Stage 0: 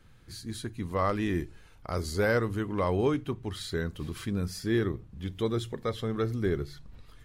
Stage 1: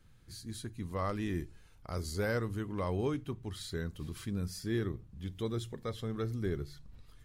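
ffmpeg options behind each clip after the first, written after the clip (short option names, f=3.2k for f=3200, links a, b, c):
-af "bass=f=250:g=4,treble=f=4k:g=5,volume=-8dB"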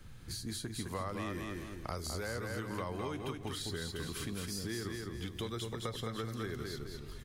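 -filter_complex "[0:a]acompressor=threshold=-36dB:ratio=6,asplit=2[a][b];[b]aecho=0:1:209|418|627|836:0.531|0.186|0.065|0.0228[c];[a][c]amix=inputs=2:normalize=0,acrossover=split=320|760[d][e][f];[d]acompressor=threshold=-53dB:ratio=4[g];[e]acompressor=threshold=-55dB:ratio=4[h];[f]acompressor=threshold=-51dB:ratio=4[i];[g][h][i]amix=inputs=3:normalize=0,volume=10dB"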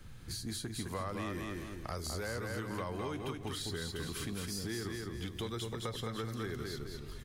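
-af "asoftclip=type=tanh:threshold=-28dB,volume=1dB"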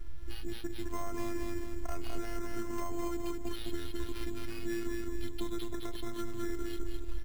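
-af "afftfilt=real='hypot(re,im)*cos(PI*b)':imag='0':win_size=512:overlap=0.75,aemphasis=mode=reproduction:type=bsi,acrusher=samples=6:mix=1:aa=0.000001,volume=2.5dB"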